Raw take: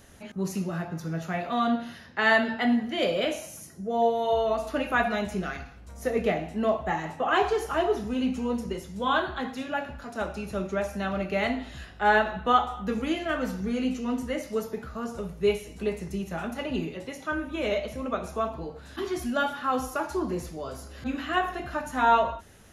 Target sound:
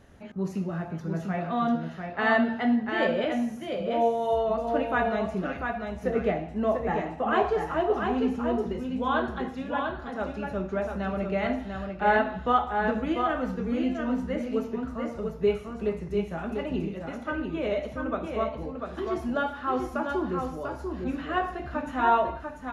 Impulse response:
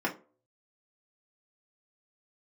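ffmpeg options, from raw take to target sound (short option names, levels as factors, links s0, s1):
-filter_complex "[0:a]lowpass=f=1500:p=1,asplit=2[s0][s1];[s1]aecho=0:1:694:0.562[s2];[s0][s2]amix=inputs=2:normalize=0"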